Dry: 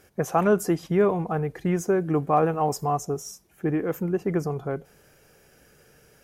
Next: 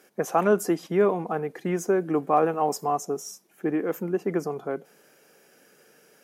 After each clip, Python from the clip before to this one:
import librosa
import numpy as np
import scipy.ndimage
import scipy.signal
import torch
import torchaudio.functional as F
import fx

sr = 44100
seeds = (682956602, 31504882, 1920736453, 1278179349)

y = scipy.signal.sosfilt(scipy.signal.butter(4, 200.0, 'highpass', fs=sr, output='sos'), x)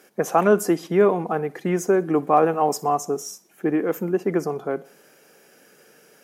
y = fx.echo_feedback(x, sr, ms=61, feedback_pct=49, wet_db=-23.0)
y = y * 10.0 ** (4.0 / 20.0)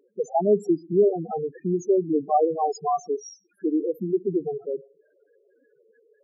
y = fx.spec_topn(x, sr, count=4)
y = y * 10.0 ** (-1.0 / 20.0)